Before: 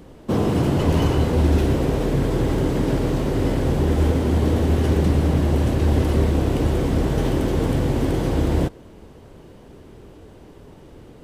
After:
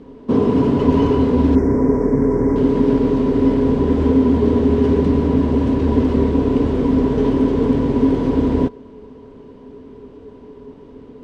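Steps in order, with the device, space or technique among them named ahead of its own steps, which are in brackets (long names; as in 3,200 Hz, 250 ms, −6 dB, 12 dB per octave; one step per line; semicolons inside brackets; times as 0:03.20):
inside a cardboard box (low-pass filter 4,600 Hz 12 dB per octave; hollow resonant body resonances 260/420/980 Hz, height 17 dB, ringing for 90 ms)
0:01.55–0:02.56: elliptic band-stop filter 2,100–5,400 Hz, stop band 50 dB
level −3 dB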